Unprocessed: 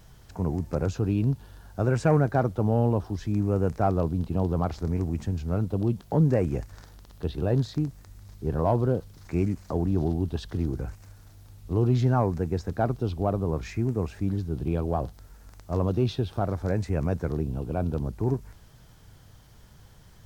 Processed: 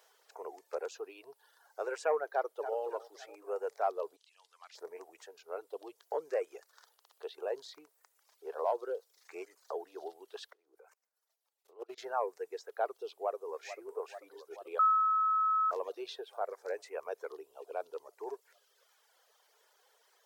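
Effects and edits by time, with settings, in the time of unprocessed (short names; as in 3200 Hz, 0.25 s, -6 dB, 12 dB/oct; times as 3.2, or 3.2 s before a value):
2.32–2.79 echo throw 0.28 s, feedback 55%, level -9 dB
4.16–4.75 Butterworth band-pass 4800 Hz, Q 0.64
10.51–11.98 level quantiser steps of 21 dB
13.14–13.68 echo throw 0.44 s, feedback 80%, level -11 dB
14.79–15.71 bleep 1290 Hz -16 dBFS
whole clip: elliptic high-pass 430 Hz, stop band 50 dB; reverb removal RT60 1.2 s; gain -5 dB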